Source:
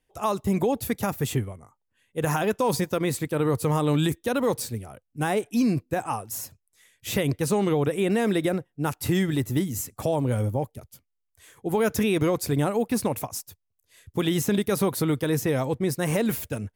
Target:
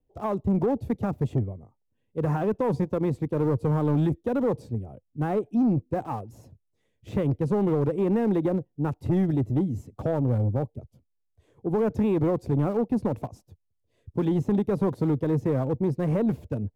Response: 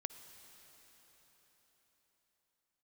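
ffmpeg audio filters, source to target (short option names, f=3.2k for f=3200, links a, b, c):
-filter_complex "[0:a]aemphasis=mode=reproduction:type=75fm,acrossover=split=240|1000|2300[a][b][c][d];[c]acrusher=bits=6:mix=0:aa=0.000001[e];[a][b][e][d]amix=inputs=4:normalize=0,tiltshelf=f=1.3k:g=9,asoftclip=type=tanh:threshold=-10dB,volume=-6.5dB"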